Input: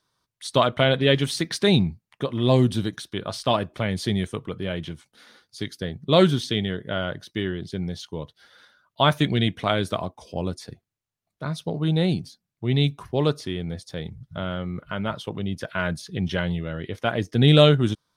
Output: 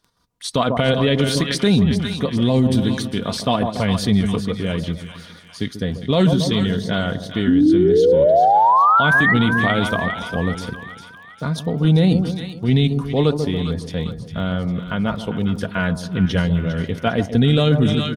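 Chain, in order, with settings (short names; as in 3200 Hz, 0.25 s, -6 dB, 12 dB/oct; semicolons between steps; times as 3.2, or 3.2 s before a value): low shelf 210 Hz +9 dB; comb 4.2 ms, depth 41%; painted sound rise, 7.47–9.34, 250–2000 Hz -16 dBFS; in parallel at +2.5 dB: level quantiser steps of 18 dB; on the sum: crackle 14/s -37 dBFS; wow and flutter 25 cents; on a send: split-band echo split 1000 Hz, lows 0.139 s, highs 0.402 s, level -10.5 dB; on the sum: limiter -7.5 dBFS, peak gain reduction 10 dB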